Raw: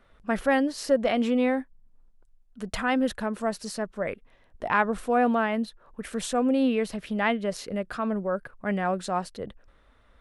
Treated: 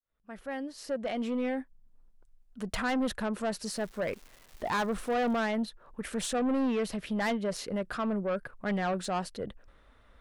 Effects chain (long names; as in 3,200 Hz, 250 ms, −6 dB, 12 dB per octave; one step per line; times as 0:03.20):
fade in at the beginning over 2.53 s
0:03.72–0:05.39: surface crackle 470 per second −43 dBFS
soft clipping −25 dBFS, distortion −10 dB